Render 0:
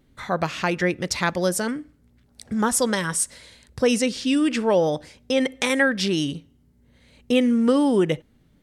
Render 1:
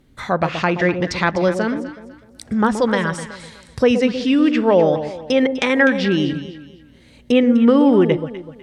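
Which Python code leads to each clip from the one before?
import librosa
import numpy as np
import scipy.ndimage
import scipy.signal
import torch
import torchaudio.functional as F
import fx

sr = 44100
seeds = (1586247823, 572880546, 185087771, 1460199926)

y = fx.env_lowpass_down(x, sr, base_hz=2800.0, full_db=-20.5)
y = fx.echo_alternate(y, sr, ms=125, hz=850.0, feedback_pct=54, wet_db=-7.5)
y = F.gain(torch.from_numpy(y), 5.0).numpy()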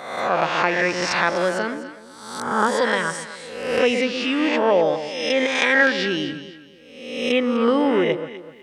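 y = fx.spec_swells(x, sr, rise_s=0.99)
y = fx.highpass(y, sr, hz=530.0, slope=6)
y = F.gain(torch.from_numpy(y), -2.0).numpy()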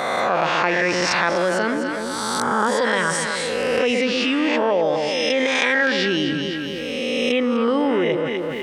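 y = fx.env_flatten(x, sr, amount_pct=70)
y = F.gain(torch.from_numpy(y), -4.0).numpy()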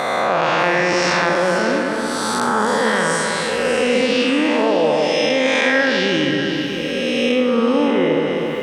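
y = fx.spec_blur(x, sr, span_ms=167.0)
y = fx.echo_alternate(y, sr, ms=295, hz=1100.0, feedback_pct=62, wet_db=-5.5)
y = F.gain(torch.from_numpy(y), 3.5).numpy()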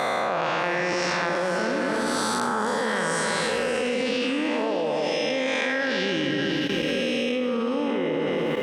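y = fx.level_steps(x, sr, step_db=12)
y = F.gain(torch.from_numpy(y), -1.0).numpy()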